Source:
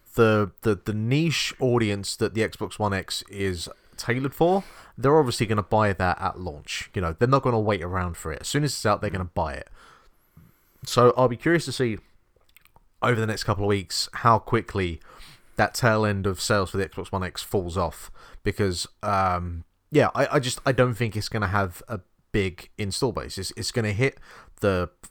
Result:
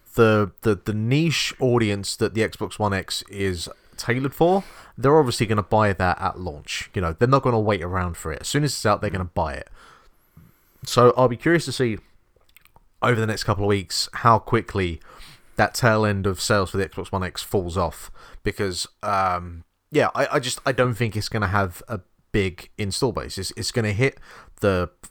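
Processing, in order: 18.48–20.85 low shelf 330 Hz -7 dB; gain +2.5 dB

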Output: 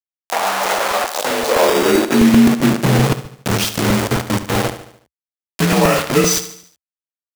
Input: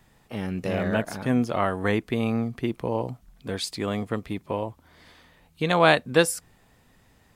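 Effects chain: inharmonic rescaling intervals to 87%; tone controls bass +12 dB, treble +10 dB; upward compressor, threshold -24 dBFS; Schroeder reverb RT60 0.38 s, combs from 31 ms, DRR 6 dB; bit-crush 4-bit; compressor 3:1, threshold -17 dBFS, peak gain reduction 6 dB; high-pass sweep 730 Hz -> 67 Hz, 1.08–3.71; 1.67–2.17 sample-rate reducer 4200 Hz, jitter 0%; low shelf 120 Hz -11.5 dB; feedback echo 73 ms, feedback 49%, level -12 dB; crackling interface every 0.13 s, samples 128, repeat, from 0.52; gain +7.5 dB

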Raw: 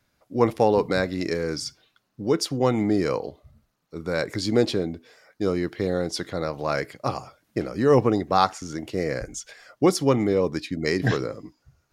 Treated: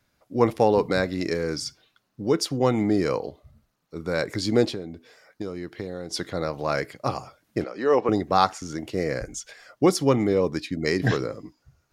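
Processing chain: 4.66–6.11 compressor 5:1, threshold -30 dBFS, peak gain reduction 10.5 dB; 7.64–8.09 BPF 400–4500 Hz

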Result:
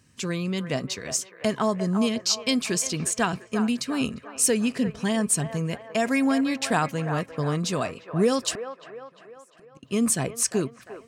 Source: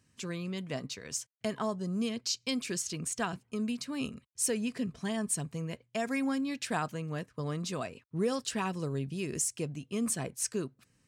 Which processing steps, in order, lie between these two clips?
8.51–9.83 flipped gate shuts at -32 dBFS, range -37 dB; band-limited delay 0.35 s, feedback 50%, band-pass 1000 Hz, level -8 dB; gain +9 dB

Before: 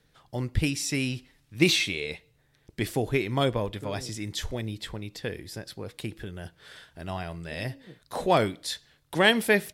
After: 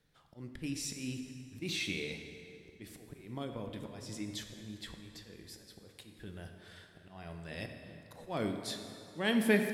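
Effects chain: dynamic EQ 240 Hz, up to +7 dB, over -40 dBFS, Q 1.1; 2.96–5.29 compressor 12:1, threshold -28 dBFS, peak gain reduction 12.5 dB; auto swell 0.269 s; plate-style reverb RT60 2.8 s, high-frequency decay 0.65×, DRR 4.5 dB; gain -8.5 dB

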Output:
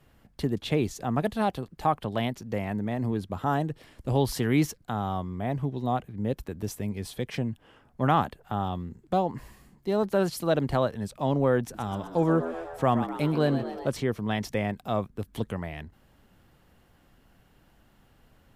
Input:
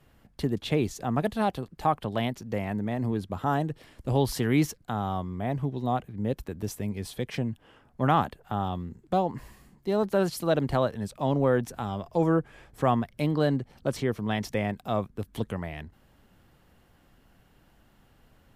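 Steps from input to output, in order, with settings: 11.62–13.89 frequency-shifting echo 0.125 s, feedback 62%, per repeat +85 Hz, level -11 dB

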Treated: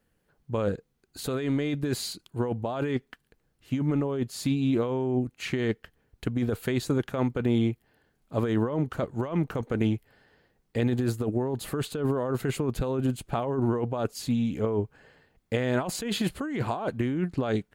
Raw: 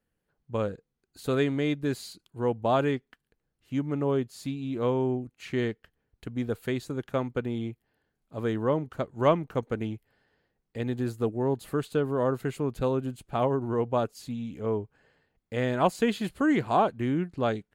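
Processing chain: negative-ratio compressor -31 dBFS, ratio -1; gain +4.5 dB

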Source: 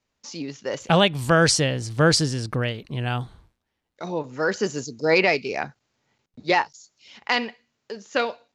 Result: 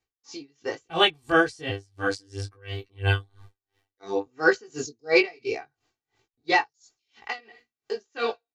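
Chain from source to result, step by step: 1.69–4.26 robotiser 98.6 Hz; comb 2.6 ms, depth 84%; AGC gain up to 16.5 dB; chorus 1.1 Hz, delay 17.5 ms, depth 3.4 ms; dB-linear tremolo 2.9 Hz, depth 30 dB; gain -1.5 dB

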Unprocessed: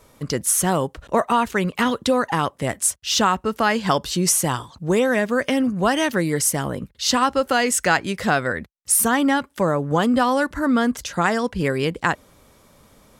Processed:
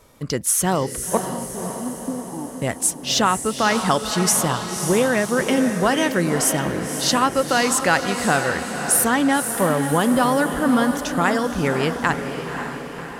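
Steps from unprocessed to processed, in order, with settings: 1.17–2.62 vocal tract filter u; diffused feedback echo 0.538 s, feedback 58%, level -7.5 dB

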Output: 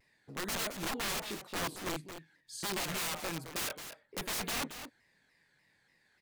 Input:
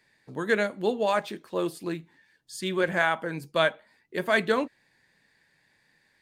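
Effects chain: wrapped overs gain 25.5 dB; on a send: echo 0.22 s -10 dB; on the sum: crackling interface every 0.22 s, samples 1024, repeat, from 0.6; shaped vibrato saw down 3.4 Hz, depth 160 cents; gain -5 dB

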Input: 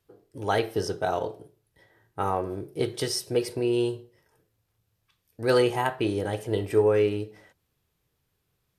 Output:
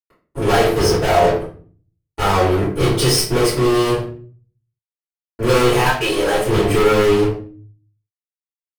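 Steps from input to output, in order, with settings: 5.85–6.38 HPF 1100 Hz -> 310 Hz 12 dB/oct; fuzz box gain 34 dB, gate -42 dBFS; shoebox room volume 36 m³, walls mixed, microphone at 2.9 m; gain -13 dB

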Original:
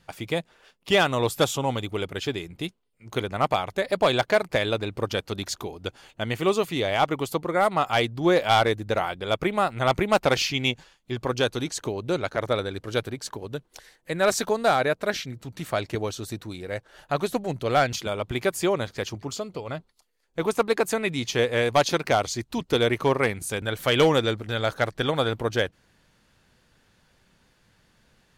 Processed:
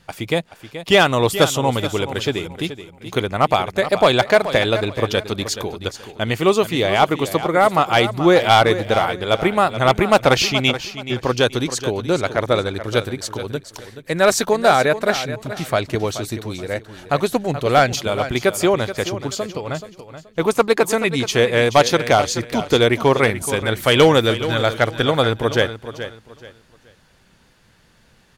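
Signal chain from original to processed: feedback echo 0.428 s, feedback 27%, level -12 dB; gain +7 dB

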